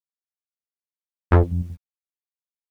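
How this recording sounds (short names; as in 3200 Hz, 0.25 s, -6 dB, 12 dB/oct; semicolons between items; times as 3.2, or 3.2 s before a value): chopped level 5.3 Hz, depth 65%, duty 55%; a quantiser's noise floor 10-bit, dither none; a shimmering, thickened sound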